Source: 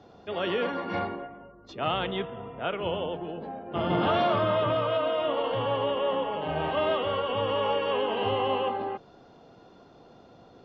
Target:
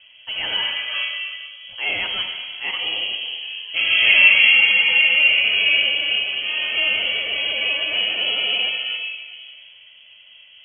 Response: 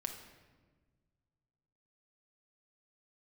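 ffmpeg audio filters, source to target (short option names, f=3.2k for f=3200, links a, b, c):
-filter_complex "[0:a]asettb=1/sr,asplit=3[a][b][c];[a]atrim=end=3.764[d];[b]atrim=start=3.76:end=5.89,asetpts=PTS-STARTPTS,afade=t=in:d=0.004:c=qsin,afade=t=out:st=2.126:d=0.004:c=qsin,equalizer=f=880:w=0.93:g=8[e];[c]atrim=start=5.886[f];[d][e]acrossfade=d=0.004:c1=hsin:c2=qsin[g];[g][f]acrossfade=d=0.004:c1=qsin:c2=hsin[h];[1:a]atrim=start_sample=2205,asetrate=23814,aresample=44100[i];[h][i]afir=irnorm=-1:irlink=0,lowpass=f=2.9k:t=q:w=0.5098,lowpass=f=2.9k:t=q:w=0.6013,lowpass=f=2.9k:t=q:w=0.9,lowpass=f=2.9k:t=q:w=2.563,afreqshift=-3400,volume=2dB"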